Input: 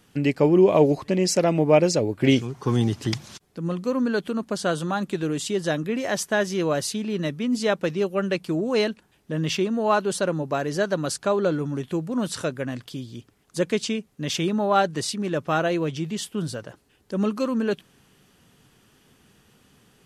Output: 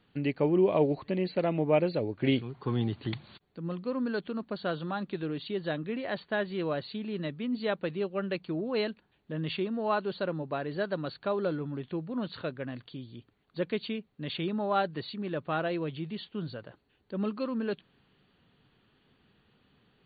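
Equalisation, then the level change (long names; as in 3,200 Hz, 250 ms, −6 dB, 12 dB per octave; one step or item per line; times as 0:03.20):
linear-phase brick-wall low-pass 4,600 Hz
−8.0 dB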